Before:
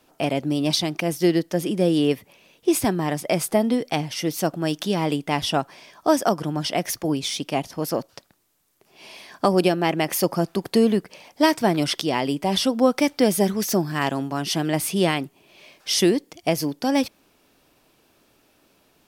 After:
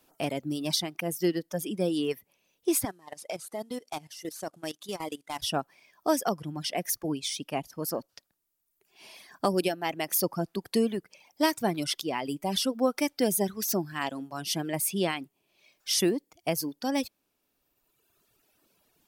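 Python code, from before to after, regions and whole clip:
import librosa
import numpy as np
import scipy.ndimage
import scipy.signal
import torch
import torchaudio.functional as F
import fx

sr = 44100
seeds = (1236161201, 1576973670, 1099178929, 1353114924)

y = fx.chain(x, sr, fx.cvsd(bps=64000),
    fx.bass_treble(bass_db=-10, treble_db=3),
    fx.level_steps(step_db=13), at=(2.85, 5.42))
y = fx.dereverb_blind(y, sr, rt60_s=1.8)
y = fx.high_shelf(y, sr, hz=8200.0, db=9.5)
y = y * librosa.db_to_amplitude(-7.0)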